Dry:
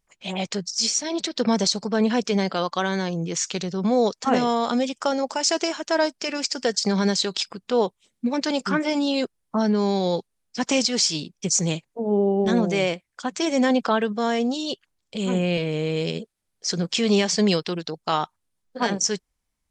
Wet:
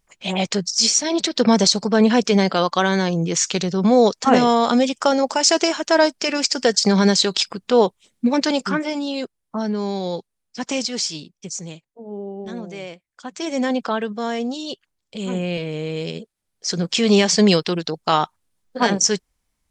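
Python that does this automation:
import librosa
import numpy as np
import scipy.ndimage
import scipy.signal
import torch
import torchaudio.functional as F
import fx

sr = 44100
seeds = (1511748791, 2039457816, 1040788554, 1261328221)

y = fx.gain(x, sr, db=fx.line((8.39, 6.0), (9.0, -2.5), (11.01, -2.5), (11.74, -11.0), (12.89, -11.0), (13.54, -1.5), (16.15, -1.5), (17.28, 5.5)))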